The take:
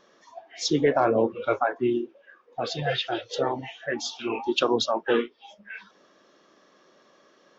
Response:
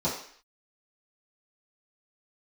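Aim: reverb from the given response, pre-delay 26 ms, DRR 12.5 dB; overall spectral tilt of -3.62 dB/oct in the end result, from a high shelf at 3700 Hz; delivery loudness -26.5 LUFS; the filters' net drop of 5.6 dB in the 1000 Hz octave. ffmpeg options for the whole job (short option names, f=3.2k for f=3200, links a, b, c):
-filter_complex "[0:a]equalizer=f=1k:t=o:g=-9,highshelf=f=3.7k:g=6.5,asplit=2[a][b];[1:a]atrim=start_sample=2205,adelay=26[c];[b][c]afir=irnorm=-1:irlink=0,volume=-22.5dB[d];[a][d]amix=inputs=2:normalize=0"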